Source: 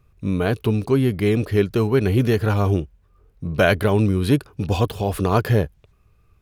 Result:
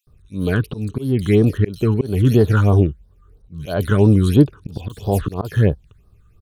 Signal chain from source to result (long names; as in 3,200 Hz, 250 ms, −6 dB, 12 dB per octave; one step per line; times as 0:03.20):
volume swells 251 ms
multiband delay without the direct sound highs, lows 70 ms, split 3,300 Hz
all-pass phaser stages 8, 3 Hz, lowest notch 650–2,400 Hz
level +5 dB